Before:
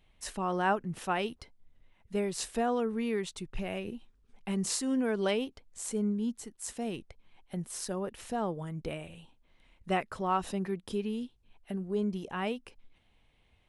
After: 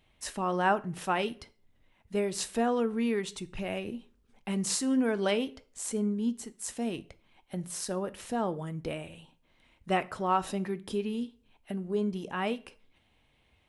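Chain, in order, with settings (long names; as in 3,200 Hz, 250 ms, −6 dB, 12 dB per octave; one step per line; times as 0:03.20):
high-pass filter 54 Hz 6 dB per octave
on a send: convolution reverb RT60 0.45 s, pre-delay 3 ms, DRR 12 dB
on the sum: level +2 dB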